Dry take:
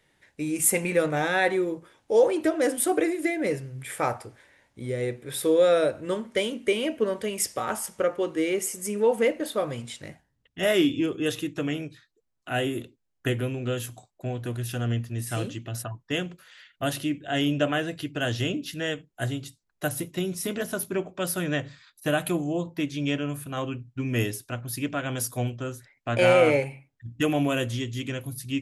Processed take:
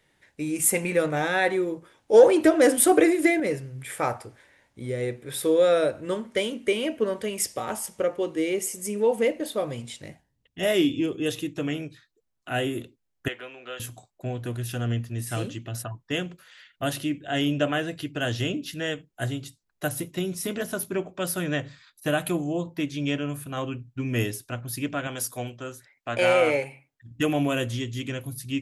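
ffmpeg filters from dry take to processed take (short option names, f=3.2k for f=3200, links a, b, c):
-filter_complex "[0:a]asettb=1/sr,asplit=3[a][b][c];[a]atrim=end=2.134[d];[b]atrim=start=2.13:end=3.4,asetpts=PTS-STARTPTS,afade=t=in:d=0.004:c=qsin,afade=t=out:st=1.266:d=0.004:c=qsin,acontrast=54[e];[c]atrim=start=3.396[f];[d][e]acrossfade=d=0.004:c1=hsin:c2=qsin[g];[g][f]acrossfade=d=0.004:c1=qsin:c2=hsin,asettb=1/sr,asplit=3[h][i][j];[h]atrim=end=7.464[k];[i]atrim=start=7.46:end=11.61,asetpts=PTS-STARTPTS,afade=t=in:d=0.004:c=qsin,afade=t=out:st=4.146:d=0.004:c=qsin,equalizer=f=1.4k:t=o:w=0.77:g=-5.5[l];[j]atrim=start=11.606[m];[k][l]acrossfade=d=0.004:c1=hsin:c2=qsin[n];[n][m]acrossfade=d=0.004:c1=qsin:c2=hsin,asettb=1/sr,asplit=3[o][p][q];[o]atrim=end=13.284[r];[p]atrim=start=13.28:end=13.8,asetpts=PTS-STARTPTS,afade=t=in:d=0.004:c=qsin,afade=t=out:st=0.516:d=0.004:c=qsin,highpass=790,lowpass=3.6k[s];[q]atrim=start=13.796[t];[r][s]acrossfade=d=0.004:c1=hsin:c2=qsin[u];[u][t]acrossfade=d=0.004:c1=qsin:c2=hsin,asettb=1/sr,asplit=3[v][w][x];[v]atrim=end=25.074[y];[w]atrim=start=25.07:end=27.11,asetpts=PTS-STARTPTS,afade=t=in:d=0.004:c=qsin,afade=t=out:st=2.036:d=0.004:c=qsin,lowshelf=f=250:g=-10.5[z];[x]atrim=start=27.106[aa];[y][z]acrossfade=d=0.004:c1=hsin:c2=qsin[ab];[ab][aa]acrossfade=d=0.004:c1=qsin:c2=hsin"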